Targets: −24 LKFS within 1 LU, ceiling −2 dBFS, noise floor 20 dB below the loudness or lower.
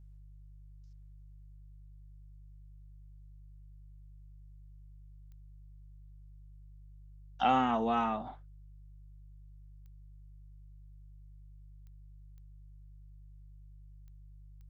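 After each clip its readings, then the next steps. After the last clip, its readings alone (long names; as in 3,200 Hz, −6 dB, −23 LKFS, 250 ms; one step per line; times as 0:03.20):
number of clicks 6; mains hum 50 Hz; hum harmonics up to 150 Hz; level of the hum −50 dBFS; integrated loudness −31.0 LKFS; sample peak −15.5 dBFS; target loudness −24.0 LKFS
→ click removal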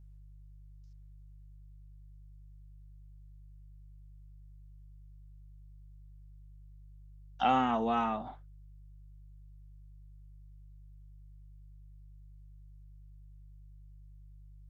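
number of clicks 0; mains hum 50 Hz; hum harmonics up to 150 Hz; level of the hum −50 dBFS
→ hum removal 50 Hz, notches 3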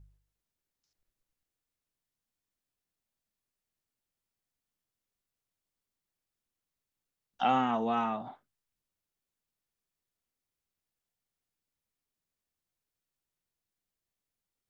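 mains hum none found; integrated loudness −30.5 LKFS; sample peak −15.0 dBFS; target loudness −24.0 LKFS
→ level +6.5 dB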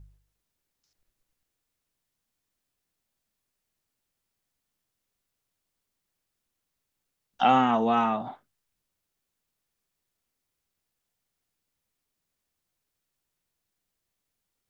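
integrated loudness −24.0 LKFS; sample peak −8.5 dBFS; background noise floor −83 dBFS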